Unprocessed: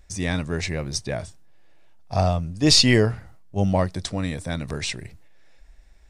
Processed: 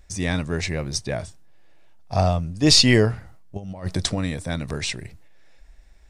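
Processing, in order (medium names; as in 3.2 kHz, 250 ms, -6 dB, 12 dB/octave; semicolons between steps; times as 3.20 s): 3.57–4.19 s: compressor with a negative ratio -27 dBFS, ratio -0.5; trim +1 dB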